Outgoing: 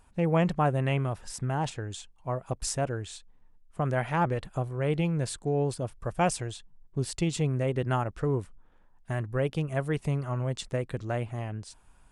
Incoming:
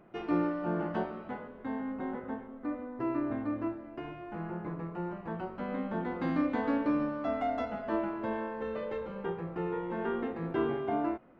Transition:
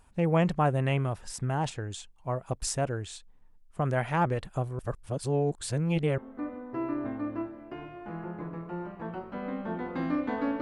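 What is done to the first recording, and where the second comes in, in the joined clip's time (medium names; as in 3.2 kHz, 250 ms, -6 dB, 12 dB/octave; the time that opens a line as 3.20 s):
outgoing
4.79–6.18 s: reverse
6.18 s: go over to incoming from 2.44 s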